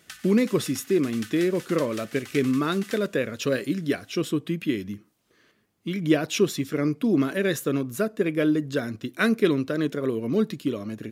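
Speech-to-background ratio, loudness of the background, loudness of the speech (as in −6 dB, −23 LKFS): 17.0 dB, −42.5 LKFS, −25.5 LKFS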